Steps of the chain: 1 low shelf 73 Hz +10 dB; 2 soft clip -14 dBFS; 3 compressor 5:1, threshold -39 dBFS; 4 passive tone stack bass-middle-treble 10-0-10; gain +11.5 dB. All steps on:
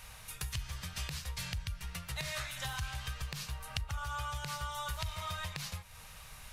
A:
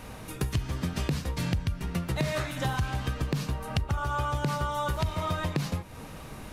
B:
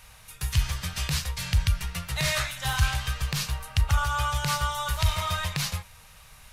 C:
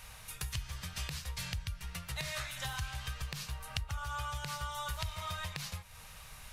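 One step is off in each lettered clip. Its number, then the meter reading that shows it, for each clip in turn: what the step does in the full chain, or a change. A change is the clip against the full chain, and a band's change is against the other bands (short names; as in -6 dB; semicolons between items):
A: 4, 250 Hz band +12.0 dB; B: 3, mean gain reduction 9.0 dB; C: 2, distortion -22 dB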